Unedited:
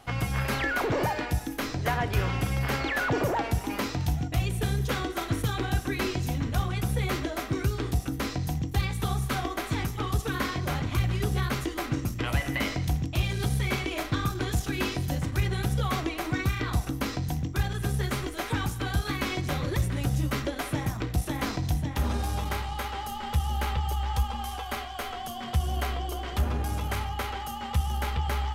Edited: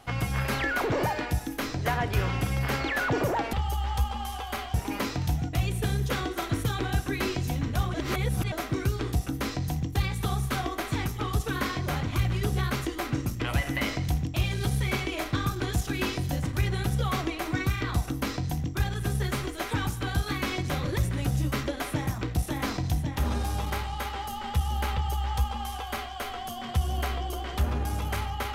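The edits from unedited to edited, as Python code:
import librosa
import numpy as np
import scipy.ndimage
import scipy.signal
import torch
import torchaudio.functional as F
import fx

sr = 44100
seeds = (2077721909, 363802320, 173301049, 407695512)

y = fx.edit(x, sr, fx.reverse_span(start_s=6.73, length_s=0.58),
    fx.duplicate(start_s=23.72, length_s=1.21, to_s=3.53), tone=tone)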